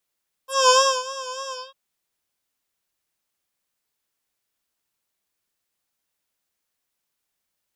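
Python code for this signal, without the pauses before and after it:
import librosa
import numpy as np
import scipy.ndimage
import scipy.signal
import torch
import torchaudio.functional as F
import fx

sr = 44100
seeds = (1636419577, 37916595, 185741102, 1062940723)

y = fx.sub_patch_vibrato(sr, seeds[0], note=84, wave='triangle', wave2='square', interval_st=0, detune_cents=16, level2_db=-1.5, sub_db=-1, noise_db=-25.0, kind='lowpass', cutoff_hz=3600.0, q=5.8, env_oct=2.0, env_decay_s=0.06, env_sustain_pct=40, attack_ms=217.0, decay_s=0.33, sustain_db=-18.0, release_s=0.2, note_s=1.05, lfo_hz=3.4, vibrato_cents=61)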